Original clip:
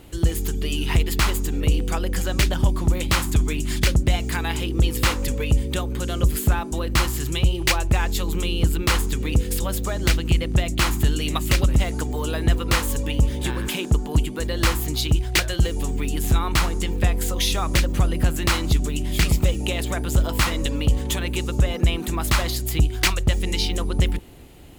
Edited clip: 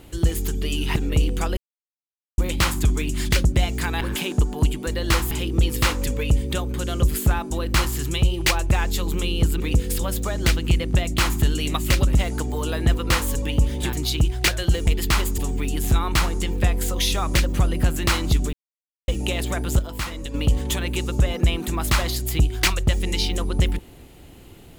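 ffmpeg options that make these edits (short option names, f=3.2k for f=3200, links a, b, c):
-filter_complex "[0:a]asplit=14[a][b][c][d][e][f][g][h][i][j][k][l][m][n];[a]atrim=end=0.962[o];[b]atrim=start=1.468:end=2.08,asetpts=PTS-STARTPTS,afade=t=out:st=0.608:d=0.004:c=hsin[p];[c]atrim=start=2.08:end=2.89,asetpts=PTS-STARTPTS,volume=0[q];[d]atrim=start=2.89:end=4.522,asetpts=PTS-STARTPTS,afade=t=in:d=0.004:c=hsin[r];[e]atrim=start=13.538:end=14.842[s];[f]atrim=start=4.518:end=8.812[t];[g]atrim=start=9.208:end=13.542[u];[h]atrim=start=14.838:end=15.782[v];[i]atrim=start=0.958:end=1.472[w];[j]atrim=start=15.778:end=18.93,asetpts=PTS-STARTPTS,afade=t=out:st=3.148:d=0.004:c=hsin[x];[k]atrim=start=18.93:end=19.48,asetpts=PTS-STARTPTS,volume=0[y];[l]atrim=start=19.48:end=20.192,asetpts=PTS-STARTPTS,afade=t=in:d=0.004:c=hsin[z];[m]atrim=start=20.188:end=20.742,asetpts=PTS-STARTPTS,volume=-8dB[aa];[n]atrim=start=20.738[ab];[p][q][r]concat=n=3:v=0:a=1[ac];[o][ac]acrossfade=d=0.004:c1=hsin:c2=hsin[ad];[ad][s]acrossfade=d=0.004:c1=hsin:c2=hsin[ae];[ae][t]acrossfade=d=0.004:c1=hsin:c2=hsin[af];[af][u]acrossfade=d=0.004:c1=hsin:c2=hsin[ag];[ag][v]acrossfade=d=0.004:c1=hsin:c2=hsin[ah];[ah][w]acrossfade=d=0.004:c1=hsin:c2=hsin[ai];[x][y][z]concat=n=3:v=0:a=1[aj];[ai][aj]acrossfade=d=0.004:c1=hsin:c2=hsin[ak];[ak][aa]acrossfade=d=0.004:c1=hsin:c2=hsin[al];[al][ab]acrossfade=d=0.004:c1=hsin:c2=hsin"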